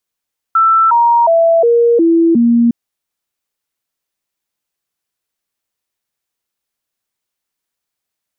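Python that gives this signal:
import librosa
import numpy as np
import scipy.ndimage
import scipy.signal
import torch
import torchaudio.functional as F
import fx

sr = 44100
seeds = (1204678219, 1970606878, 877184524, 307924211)

y = fx.stepped_sweep(sr, from_hz=1330.0, direction='down', per_octave=2, tones=6, dwell_s=0.36, gap_s=0.0, level_db=-6.5)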